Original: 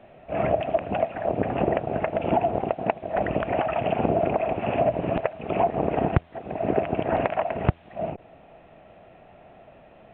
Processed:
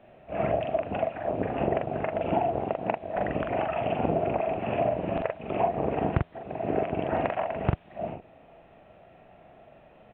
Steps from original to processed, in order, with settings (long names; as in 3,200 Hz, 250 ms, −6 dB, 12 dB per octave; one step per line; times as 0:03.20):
double-tracking delay 43 ms −3.5 dB
level −5 dB